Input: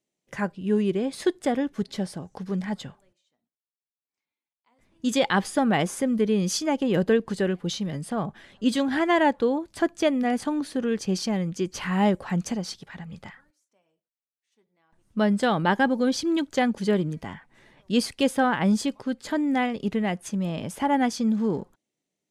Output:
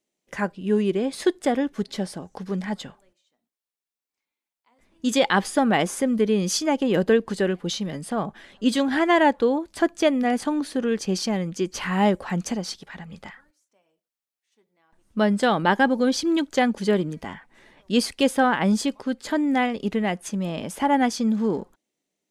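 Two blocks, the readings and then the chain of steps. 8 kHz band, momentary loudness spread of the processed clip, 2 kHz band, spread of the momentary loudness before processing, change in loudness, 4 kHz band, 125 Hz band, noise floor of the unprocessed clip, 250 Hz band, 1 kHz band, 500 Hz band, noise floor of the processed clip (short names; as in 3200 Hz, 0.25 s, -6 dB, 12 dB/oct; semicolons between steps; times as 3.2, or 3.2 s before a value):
+3.0 dB, 11 LU, +3.0 dB, 10 LU, +2.0 dB, +3.0 dB, -0.5 dB, under -85 dBFS, +1.5 dB, +3.0 dB, +2.5 dB, under -85 dBFS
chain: bell 120 Hz -10 dB 0.83 oct; gain +3 dB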